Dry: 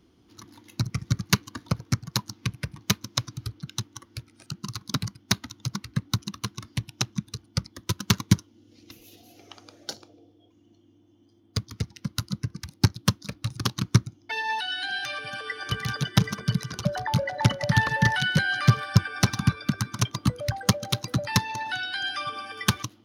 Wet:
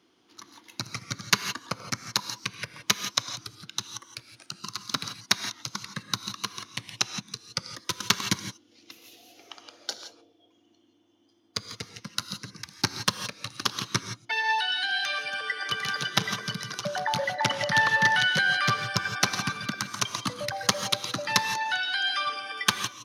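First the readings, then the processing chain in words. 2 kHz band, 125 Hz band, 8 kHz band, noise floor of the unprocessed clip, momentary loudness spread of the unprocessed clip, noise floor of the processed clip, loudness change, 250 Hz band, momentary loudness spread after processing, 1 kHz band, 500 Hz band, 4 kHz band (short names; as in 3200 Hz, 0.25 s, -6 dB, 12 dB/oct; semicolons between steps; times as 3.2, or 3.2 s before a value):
+3.0 dB, -13.5 dB, +2.0 dB, -60 dBFS, 12 LU, -64 dBFS, -0.5 dB, -9.0 dB, 14 LU, +2.0 dB, -1.0 dB, +3.0 dB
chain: weighting filter A; non-linear reverb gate 0.19 s rising, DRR 8.5 dB; gain +1.5 dB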